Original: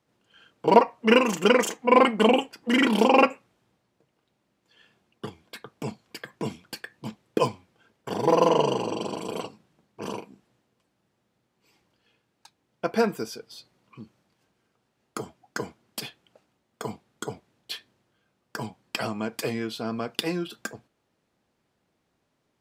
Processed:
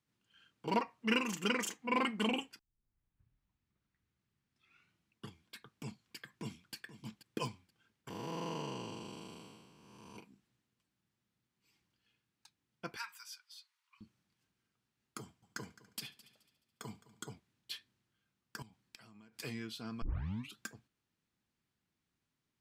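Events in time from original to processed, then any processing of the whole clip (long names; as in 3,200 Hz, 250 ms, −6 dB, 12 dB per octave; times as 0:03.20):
0:02.59: tape start 2.69 s
0:06.27–0:06.74: delay throw 480 ms, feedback 20%, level −13.5 dB
0:08.10–0:10.16: spectrum smeared in time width 465 ms
0:12.96–0:14.01: elliptic high-pass filter 920 Hz
0:15.21–0:17.28: echo machine with several playback heads 71 ms, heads first and third, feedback 45%, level −19 dB
0:18.62–0:19.40: downward compressor 20 to 1, threshold −42 dBFS
0:20.02: tape start 0.54 s
whole clip: parametric band 580 Hz −13 dB 1.6 octaves; level −8.5 dB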